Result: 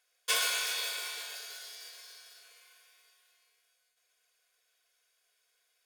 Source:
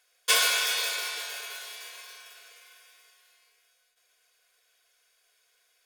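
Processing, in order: 1.35–2.43 thirty-one-band EQ 1000 Hz -7 dB, 2500 Hz -6 dB, 5000 Hz +8 dB; thin delay 61 ms, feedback 78%, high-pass 3700 Hz, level -9.5 dB; gain -7 dB

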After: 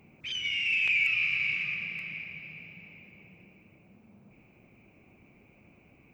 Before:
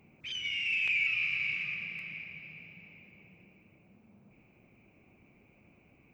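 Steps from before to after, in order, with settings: hard clip -19.5 dBFS, distortion -43 dB; gain +3.5 dB

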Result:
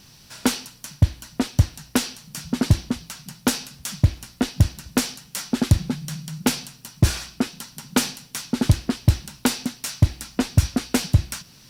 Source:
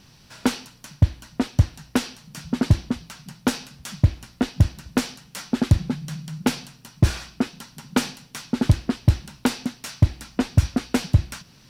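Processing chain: high shelf 4800 Hz +10 dB

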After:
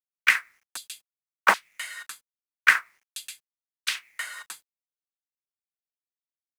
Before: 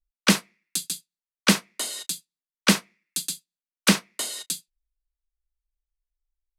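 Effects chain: resonant high shelf 2600 Hz -13 dB, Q 1.5; LFO high-pass saw down 1.3 Hz 780–4000 Hz; companded quantiser 6-bit; gain +2 dB

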